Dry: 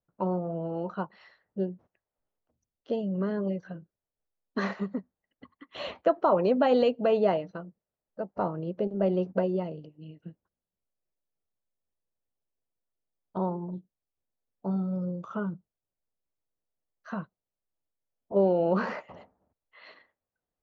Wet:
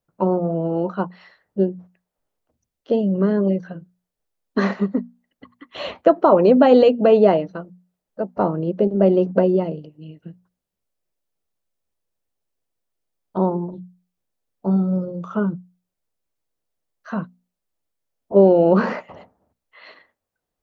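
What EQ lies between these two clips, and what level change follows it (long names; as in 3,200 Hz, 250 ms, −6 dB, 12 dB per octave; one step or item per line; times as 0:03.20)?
mains-hum notches 60/120/180/240 Hz
dynamic equaliser 280 Hz, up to +6 dB, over −38 dBFS, Q 0.71
+7.0 dB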